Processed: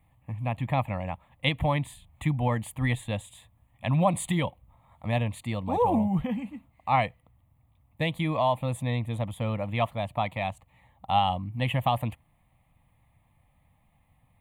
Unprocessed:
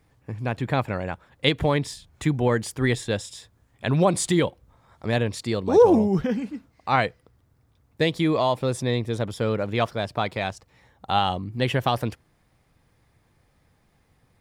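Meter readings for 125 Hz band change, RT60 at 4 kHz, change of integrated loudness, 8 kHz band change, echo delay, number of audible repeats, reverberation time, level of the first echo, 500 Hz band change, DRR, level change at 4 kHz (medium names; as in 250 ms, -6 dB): -1.5 dB, no reverb, -4.5 dB, -8.0 dB, no echo, no echo, no reverb, no echo, -8.5 dB, no reverb, -6.0 dB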